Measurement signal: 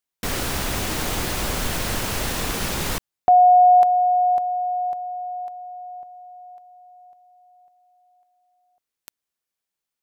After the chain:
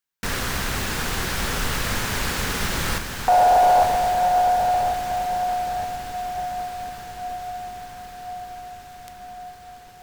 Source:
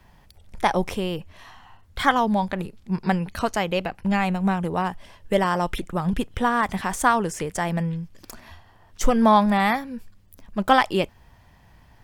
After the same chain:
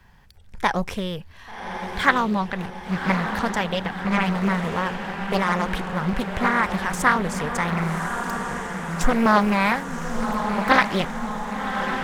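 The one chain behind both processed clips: thirty-one-band EQ 315 Hz -6 dB, 630 Hz -7 dB, 1600 Hz +6 dB, 10000 Hz -3 dB; diffused feedback echo 1.141 s, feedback 65%, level -6.5 dB; Doppler distortion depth 0.64 ms

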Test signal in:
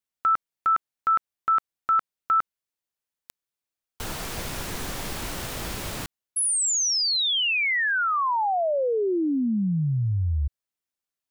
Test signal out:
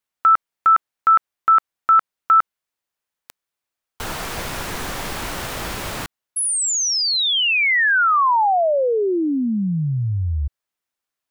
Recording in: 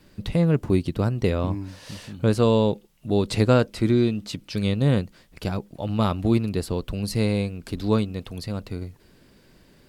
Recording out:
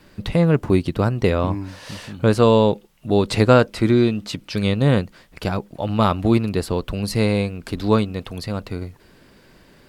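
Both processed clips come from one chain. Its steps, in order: bell 1200 Hz +5.5 dB 2.7 oct; gain +2.5 dB

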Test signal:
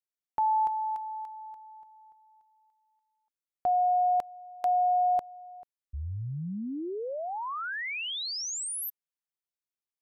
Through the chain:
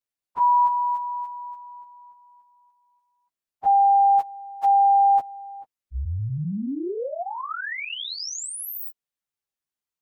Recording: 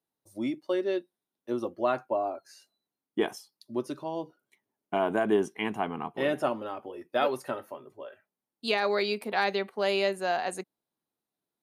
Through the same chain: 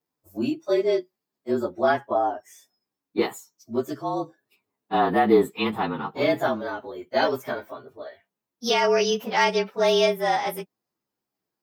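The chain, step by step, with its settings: inharmonic rescaling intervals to 109%; gain +8 dB

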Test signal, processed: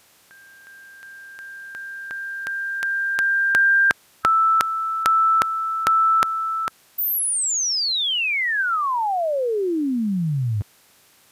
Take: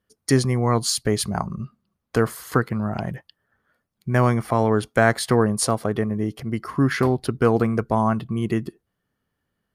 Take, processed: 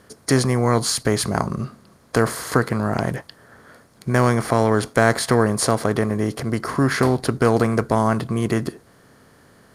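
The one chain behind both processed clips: per-bin compression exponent 0.6; gain -1 dB

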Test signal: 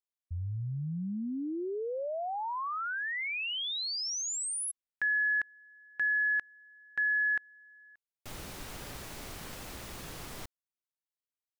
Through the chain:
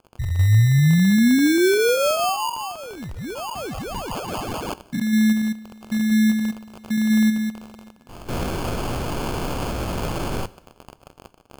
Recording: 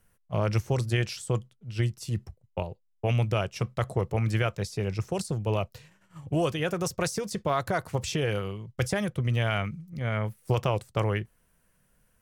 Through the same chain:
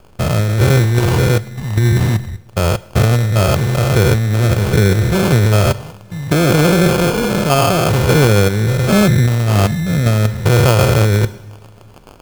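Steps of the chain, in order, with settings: stepped spectrum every 0.2 s; bell 1400 Hz -12.5 dB 1 oct; crackle 480/s -52 dBFS; sample-and-hold 23×; two-slope reverb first 0.73 s, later 3.5 s, from -20 dB, DRR 17 dB; negative-ratio compressor -31 dBFS, ratio -1; maximiser +21.5 dB; gain -1 dB

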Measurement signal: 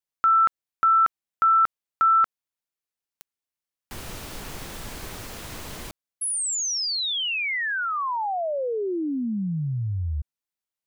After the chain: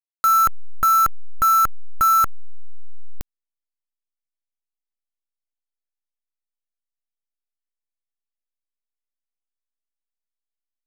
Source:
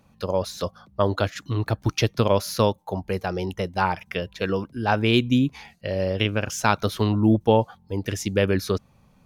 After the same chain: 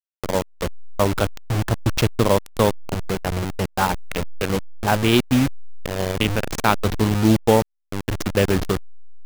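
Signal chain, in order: level-crossing sampler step -20.5 dBFS; gain +3 dB

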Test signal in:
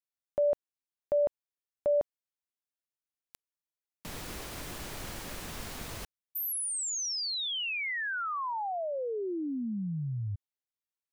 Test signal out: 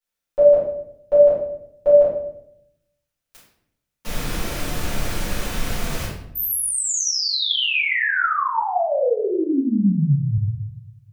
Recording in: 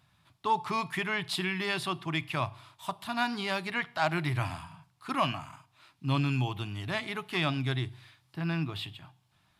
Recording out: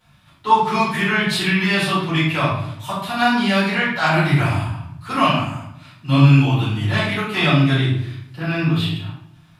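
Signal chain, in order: shoebox room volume 160 m³, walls mixed, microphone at 4.5 m; gain -1 dB

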